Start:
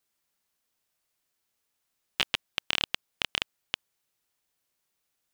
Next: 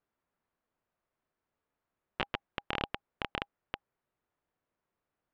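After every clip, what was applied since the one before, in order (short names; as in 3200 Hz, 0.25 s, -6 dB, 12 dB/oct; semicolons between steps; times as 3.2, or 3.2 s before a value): LPF 1300 Hz 12 dB/oct; notch 810 Hz, Q 25; gain +3 dB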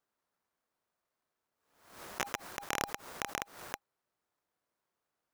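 median filter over 15 samples; tilt +2.5 dB/oct; backwards sustainer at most 87 dB/s; gain +2 dB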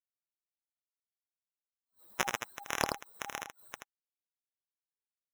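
per-bin expansion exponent 3; echo 80 ms -5 dB; gain +7.5 dB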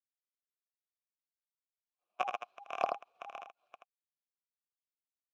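median filter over 5 samples; vowel filter a; three-band expander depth 40%; gain +7.5 dB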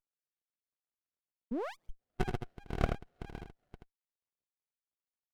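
painted sound rise, 1.51–1.9, 210–3300 Hz -35 dBFS; running maximum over 33 samples; gain +2.5 dB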